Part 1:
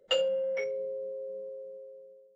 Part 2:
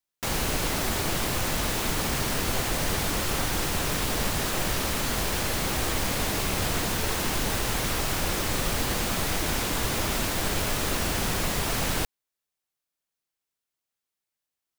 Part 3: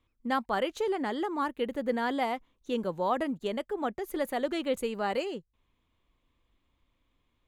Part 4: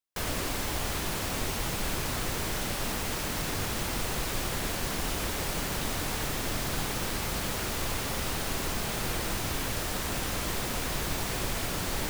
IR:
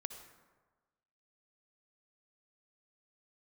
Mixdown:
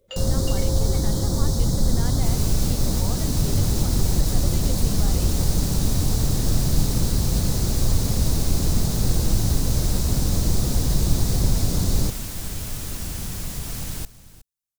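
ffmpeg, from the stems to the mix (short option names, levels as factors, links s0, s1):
-filter_complex "[0:a]volume=0.596,asplit=2[s0][s1];[s1]volume=0.355[s2];[1:a]adelay=2000,volume=0.224,asplit=2[s3][s4];[s4]volume=0.133[s5];[2:a]volume=0.422[s6];[3:a]acrossover=split=7700[s7][s8];[s8]acompressor=threshold=0.00398:ratio=4:attack=1:release=60[s9];[s7][s9]amix=inputs=2:normalize=0,firequalizer=gain_entry='entry(500,0);entry(2700,-27);entry(3800,-4)':delay=0.05:min_phase=1,volume=1.26[s10];[s0][s3][s6]amix=inputs=3:normalize=0,alimiter=level_in=1.68:limit=0.0631:level=0:latency=1,volume=0.596,volume=1[s11];[s2][s5]amix=inputs=2:normalize=0,aecho=0:1:365:1[s12];[s10][s11][s12]amix=inputs=3:normalize=0,bass=f=250:g=14,treble=f=4000:g=11"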